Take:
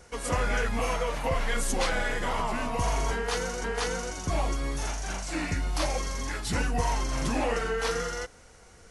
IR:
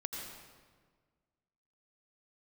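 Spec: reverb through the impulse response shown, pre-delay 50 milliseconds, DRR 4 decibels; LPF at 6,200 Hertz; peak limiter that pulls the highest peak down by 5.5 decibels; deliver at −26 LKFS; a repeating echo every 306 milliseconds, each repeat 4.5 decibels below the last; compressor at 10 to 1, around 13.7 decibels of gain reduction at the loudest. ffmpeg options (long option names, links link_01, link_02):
-filter_complex "[0:a]lowpass=6200,acompressor=threshold=-37dB:ratio=10,alimiter=level_in=8.5dB:limit=-24dB:level=0:latency=1,volume=-8.5dB,aecho=1:1:306|612|918|1224|1530|1836|2142|2448|2754:0.596|0.357|0.214|0.129|0.0772|0.0463|0.0278|0.0167|0.01,asplit=2[link_01][link_02];[1:a]atrim=start_sample=2205,adelay=50[link_03];[link_02][link_03]afir=irnorm=-1:irlink=0,volume=-4.5dB[link_04];[link_01][link_04]amix=inputs=2:normalize=0,volume=14dB"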